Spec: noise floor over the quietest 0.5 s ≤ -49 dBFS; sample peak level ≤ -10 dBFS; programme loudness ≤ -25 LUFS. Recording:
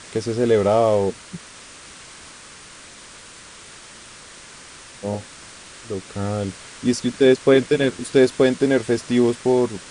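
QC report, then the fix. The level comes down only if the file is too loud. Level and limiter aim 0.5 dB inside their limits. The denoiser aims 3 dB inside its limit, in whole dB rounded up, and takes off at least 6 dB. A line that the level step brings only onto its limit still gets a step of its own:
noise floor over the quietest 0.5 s -42 dBFS: fail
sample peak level -3.0 dBFS: fail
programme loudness -19.5 LUFS: fail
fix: denoiser 6 dB, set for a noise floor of -42 dBFS; gain -6 dB; limiter -10.5 dBFS

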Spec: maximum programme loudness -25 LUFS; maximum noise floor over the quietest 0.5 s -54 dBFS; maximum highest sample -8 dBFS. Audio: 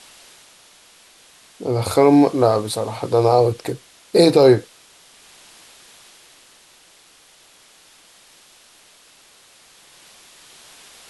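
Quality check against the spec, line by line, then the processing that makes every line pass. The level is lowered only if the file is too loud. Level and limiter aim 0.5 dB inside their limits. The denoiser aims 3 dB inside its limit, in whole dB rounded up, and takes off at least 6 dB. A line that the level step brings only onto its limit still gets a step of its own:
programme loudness -17.0 LUFS: fail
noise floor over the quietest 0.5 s -51 dBFS: fail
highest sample -1.5 dBFS: fail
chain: gain -8.5 dB

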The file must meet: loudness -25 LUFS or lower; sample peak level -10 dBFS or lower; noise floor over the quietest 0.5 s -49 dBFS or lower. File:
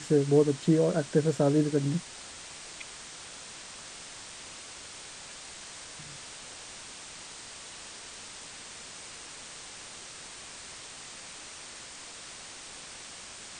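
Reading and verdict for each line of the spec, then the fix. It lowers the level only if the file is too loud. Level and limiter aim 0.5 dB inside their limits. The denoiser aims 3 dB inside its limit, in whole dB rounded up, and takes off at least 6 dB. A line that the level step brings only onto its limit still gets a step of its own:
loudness -33.5 LUFS: OK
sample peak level -11.0 dBFS: OK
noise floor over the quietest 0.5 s -45 dBFS: fail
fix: denoiser 7 dB, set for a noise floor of -45 dBFS

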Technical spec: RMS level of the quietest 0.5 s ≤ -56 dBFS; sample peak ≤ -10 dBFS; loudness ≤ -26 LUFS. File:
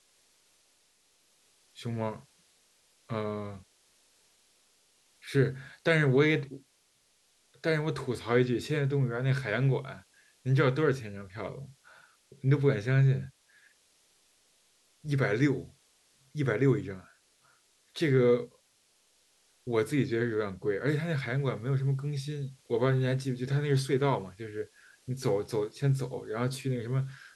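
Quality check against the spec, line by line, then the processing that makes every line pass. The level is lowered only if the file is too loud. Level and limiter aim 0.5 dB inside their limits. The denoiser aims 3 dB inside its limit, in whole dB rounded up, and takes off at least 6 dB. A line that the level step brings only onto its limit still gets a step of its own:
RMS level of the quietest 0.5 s -69 dBFS: OK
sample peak -11.0 dBFS: OK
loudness -30.0 LUFS: OK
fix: none

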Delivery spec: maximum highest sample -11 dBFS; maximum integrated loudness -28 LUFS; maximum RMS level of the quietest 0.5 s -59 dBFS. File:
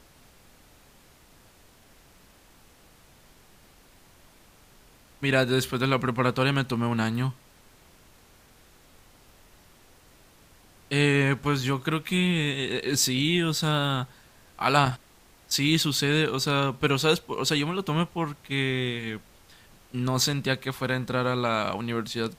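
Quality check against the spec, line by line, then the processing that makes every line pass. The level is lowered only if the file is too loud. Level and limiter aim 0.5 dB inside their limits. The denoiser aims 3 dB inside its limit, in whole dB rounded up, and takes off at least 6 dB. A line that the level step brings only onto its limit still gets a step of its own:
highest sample -5.0 dBFS: fail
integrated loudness -25.5 LUFS: fail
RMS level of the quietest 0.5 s -56 dBFS: fail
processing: denoiser 6 dB, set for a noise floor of -56 dBFS; gain -3 dB; limiter -11.5 dBFS

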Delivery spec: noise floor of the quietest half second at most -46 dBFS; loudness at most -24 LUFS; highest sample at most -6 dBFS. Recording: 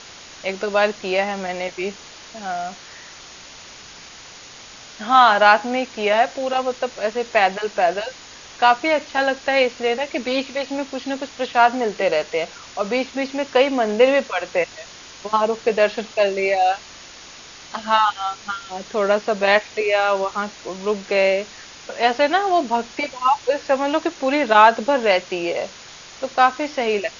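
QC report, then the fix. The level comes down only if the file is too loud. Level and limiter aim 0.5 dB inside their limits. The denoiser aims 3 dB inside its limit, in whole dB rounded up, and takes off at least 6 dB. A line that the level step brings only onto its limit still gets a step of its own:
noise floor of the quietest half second -41 dBFS: fail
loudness -20.0 LUFS: fail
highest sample -1.5 dBFS: fail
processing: denoiser 6 dB, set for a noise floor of -41 dBFS; gain -4.5 dB; limiter -6.5 dBFS

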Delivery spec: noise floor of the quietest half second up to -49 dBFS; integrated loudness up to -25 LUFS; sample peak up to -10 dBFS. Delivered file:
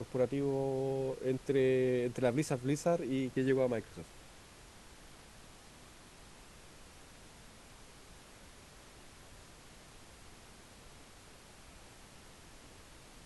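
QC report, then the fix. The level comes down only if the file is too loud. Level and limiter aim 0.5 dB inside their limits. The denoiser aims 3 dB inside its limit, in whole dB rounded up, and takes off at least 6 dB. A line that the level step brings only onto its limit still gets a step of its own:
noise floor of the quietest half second -56 dBFS: OK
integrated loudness -33.5 LUFS: OK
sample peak -18.0 dBFS: OK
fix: none

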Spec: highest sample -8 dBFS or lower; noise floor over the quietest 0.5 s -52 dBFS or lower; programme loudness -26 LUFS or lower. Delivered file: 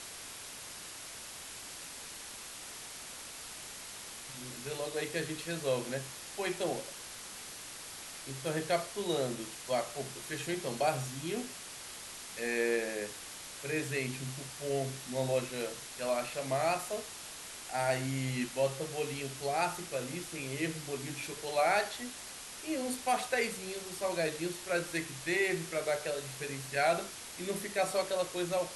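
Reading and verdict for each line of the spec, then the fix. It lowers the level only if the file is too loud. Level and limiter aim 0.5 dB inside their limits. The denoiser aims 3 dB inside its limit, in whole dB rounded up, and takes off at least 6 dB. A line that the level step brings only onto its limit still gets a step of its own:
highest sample -17.5 dBFS: OK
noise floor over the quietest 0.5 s -46 dBFS: fail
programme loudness -36.0 LUFS: OK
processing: denoiser 9 dB, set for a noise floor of -46 dBFS

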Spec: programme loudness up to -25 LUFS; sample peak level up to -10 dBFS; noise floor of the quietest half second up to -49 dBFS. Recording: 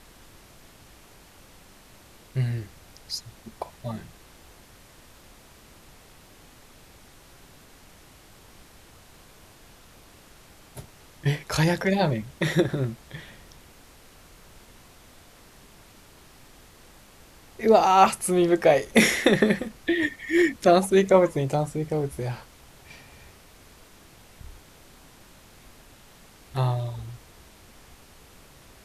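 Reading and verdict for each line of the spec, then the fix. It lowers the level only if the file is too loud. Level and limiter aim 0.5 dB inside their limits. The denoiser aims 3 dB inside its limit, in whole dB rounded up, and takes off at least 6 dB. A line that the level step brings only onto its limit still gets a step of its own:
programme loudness -23.5 LUFS: fail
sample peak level -5.0 dBFS: fail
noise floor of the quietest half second -52 dBFS: OK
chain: gain -2 dB; limiter -10.5 dBFS

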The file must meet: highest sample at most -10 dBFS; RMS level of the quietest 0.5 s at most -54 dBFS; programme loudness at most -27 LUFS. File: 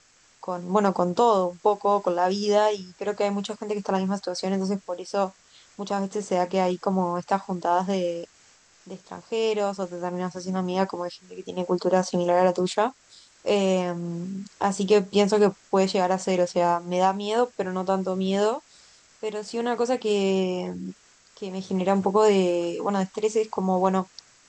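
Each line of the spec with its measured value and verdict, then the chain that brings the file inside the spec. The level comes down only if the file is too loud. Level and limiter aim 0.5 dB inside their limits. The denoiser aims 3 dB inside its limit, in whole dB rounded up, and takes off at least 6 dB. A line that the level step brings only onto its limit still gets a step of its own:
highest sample -8.0 dBFS: fail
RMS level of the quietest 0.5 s -57 dBFS: OK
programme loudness -25.0 LUFS: fail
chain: gain -2.5 dB

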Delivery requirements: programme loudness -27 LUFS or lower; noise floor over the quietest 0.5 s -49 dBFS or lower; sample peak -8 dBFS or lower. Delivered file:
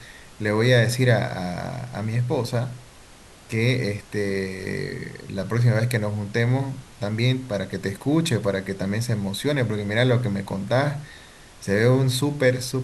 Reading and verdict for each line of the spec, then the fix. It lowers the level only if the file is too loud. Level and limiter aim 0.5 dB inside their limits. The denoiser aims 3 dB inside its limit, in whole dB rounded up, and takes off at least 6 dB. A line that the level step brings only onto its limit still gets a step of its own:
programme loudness -23.5 LUFS: fail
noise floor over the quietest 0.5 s -47 dBFS: fail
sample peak -5.5 dBFS: fail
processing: gain -4 dB

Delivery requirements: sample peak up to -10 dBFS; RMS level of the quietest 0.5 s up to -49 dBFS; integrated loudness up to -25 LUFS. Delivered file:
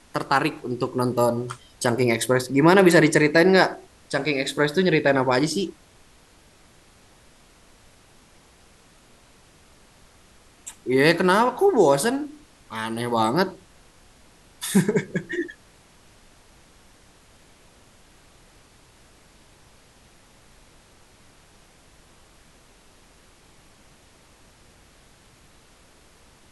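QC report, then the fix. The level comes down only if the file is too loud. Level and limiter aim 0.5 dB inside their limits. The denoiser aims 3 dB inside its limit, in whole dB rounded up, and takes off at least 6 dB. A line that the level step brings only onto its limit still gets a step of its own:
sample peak -3.0 dBFS: fail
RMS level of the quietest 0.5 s -54 dBFS: OK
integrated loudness -21.0 LUFS: fail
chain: gain -4.5 dB; limiter -10.5 dBFS

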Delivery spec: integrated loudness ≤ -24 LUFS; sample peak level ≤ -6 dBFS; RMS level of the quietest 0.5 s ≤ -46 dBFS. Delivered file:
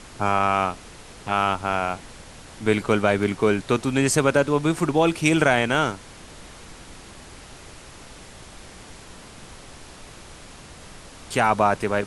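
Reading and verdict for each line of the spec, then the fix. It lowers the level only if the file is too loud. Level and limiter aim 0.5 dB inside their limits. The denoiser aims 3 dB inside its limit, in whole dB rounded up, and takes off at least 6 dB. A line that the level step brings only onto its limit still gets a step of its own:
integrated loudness -21.5 LUFS: fail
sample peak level -4.0 dBFS: fail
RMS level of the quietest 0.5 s -43 dBFS: fail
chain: denoiser 6 dB, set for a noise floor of -43 dBFS; gain -3 dB

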